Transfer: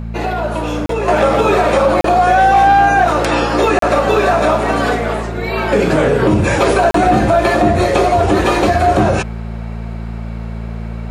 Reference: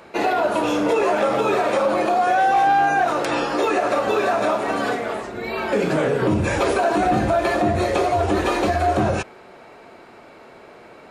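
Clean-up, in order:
hum removal 56.3 Hz, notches 4
repair the gap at 0:00.86/0:02.01/0:03.79/0:06.91, 33 ms
level correction −7 dB, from 0:01.08

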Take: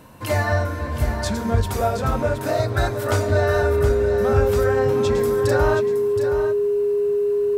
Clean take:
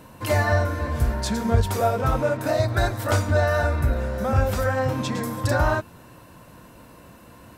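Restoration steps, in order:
notch filter 410 Hz, Q 30
echo removal 721 ms −9 dB

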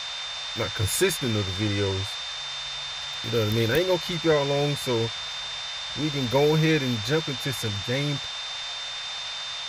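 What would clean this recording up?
notch filter 3,600 Hz, Q 30
noise reduction from a noise print 30 dB

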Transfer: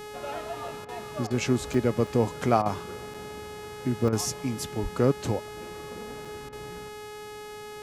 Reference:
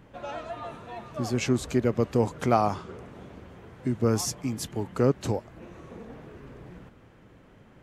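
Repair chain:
hum removal 420.9 Hz, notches 33
0:04.82–0:04.94: high-pass filter 140 Hz 24 dB per octave
repair the gap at 0:00.68/0:01.74/0:02.07/0:03.14/0:04.08/0:06.25, 3.4 ms
repair the gap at 0:00.85/0:01.27/0:02.62/0:04.09/0:06.49, 35 ms

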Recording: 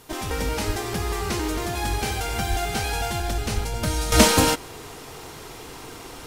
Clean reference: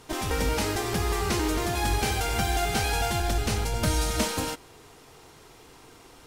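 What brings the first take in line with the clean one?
high-pass at the plosives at 0:00.66/0:02.49/0:03.54
downward expander −32 dBFS, range −21 dB
level 0 dB, from 0:04.12 −11.5 dB

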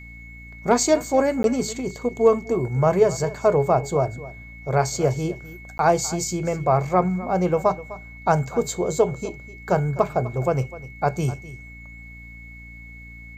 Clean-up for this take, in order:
hum removal 57.7 Hz, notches 5
notch filter 2,200 Hz, Q 30
repair the gap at 0:01.43/0:05.78, 12 ms
echo removal 253 ms −17 dB

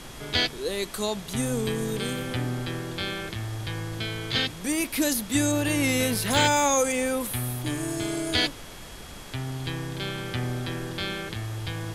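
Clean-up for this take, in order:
notch filter 3,300 Hz, Q 30
noise reduction from a noise print 30 dB

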